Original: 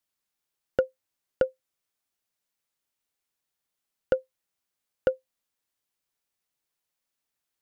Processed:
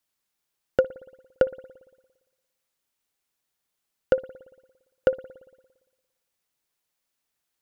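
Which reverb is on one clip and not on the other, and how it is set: spring tank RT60 1.2 s, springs 57 ms, chirp 25 ms, DRR 17 dB; gain +3.5 dB

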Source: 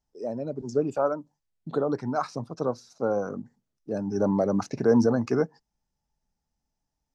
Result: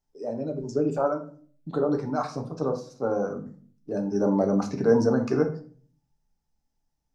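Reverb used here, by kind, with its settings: shoebox room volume 41 m³, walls mixed, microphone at 0.42 m; gain -1.5 dB

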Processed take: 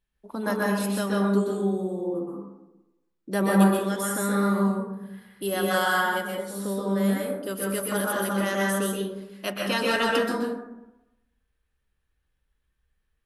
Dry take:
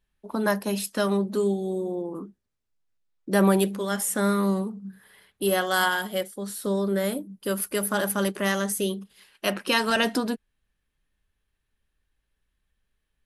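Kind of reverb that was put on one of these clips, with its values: plate-style reverb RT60 0.96 s, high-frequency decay 0.35×, pre-delay 0.115 s, DRR -3.5 dB; gain -5 dB

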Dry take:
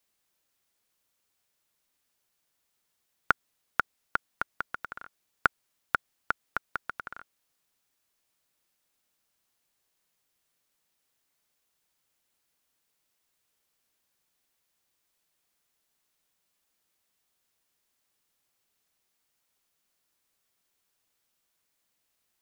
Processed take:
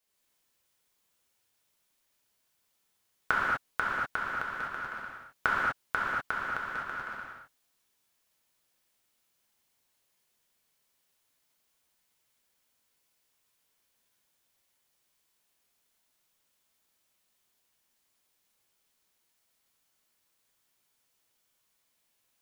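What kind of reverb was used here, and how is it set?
non-linear reverb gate 0.27 s flat, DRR -7.5 dB; gain -6 dB

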